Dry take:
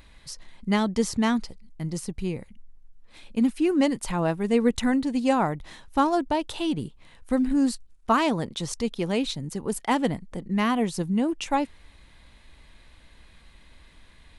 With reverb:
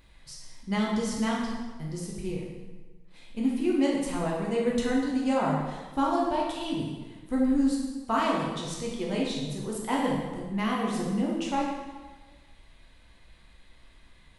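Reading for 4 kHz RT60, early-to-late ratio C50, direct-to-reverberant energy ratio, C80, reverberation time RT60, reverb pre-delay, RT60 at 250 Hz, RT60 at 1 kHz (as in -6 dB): 1.1 s, 1.0 dB, -3.5 dB, 3.5 dB, 1.3 s, 7 ms, 1.4 s, 1.3 s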